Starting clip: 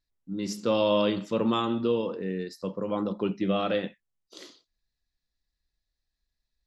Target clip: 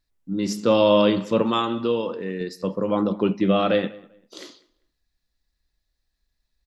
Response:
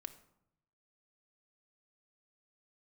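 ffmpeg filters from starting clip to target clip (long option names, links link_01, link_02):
-filter_complex "[0:a]asettb=1/sr,asplit=3[link_01][link_02][link_03];[link_01]atrim=end=1.424[link_04];[link_02]atrim=start=1.42:end=2.41,asetpts=PTS-STARTPTS,afade=type=in:duration=0.004:curve=qsin,afade=type=out:start_time=0.986:duration=0.004:curve=qsin,lowshelf=frequency=450:gain=-7.5[link_05];[link_03]atrim=start=2.406[link_06];[link_04][link_05]acrossfade=duration=0.004:curve1=hsin:curve2=qsin[link_07];[link_07][link_06]acrossfade=duration=0.004:curve1=qsin:curve2=hsin,asplit=2[link_08][link_09];[link_09]adelay=197,lowpass=frequency=3200:poles=1,volume=-22dB,asplit=2[link_10][link_11];[link_11]adelay=197,lowpass=frequency=3200:poles=1,volume=0.25[link_12];[link_08][link_10][link_12]amix=inputs=3:normalize=0,asplit=2[link_13][link_14];[1:a]atrim=start_sample=2205,lowpass=3000[link_15];[link_14][link_15]afir=irnorm=-1:irlink=0,volume=-10dB[link_16];[link_13][link_16]amix=inputs=2:normalize=0,volume=5.5dB"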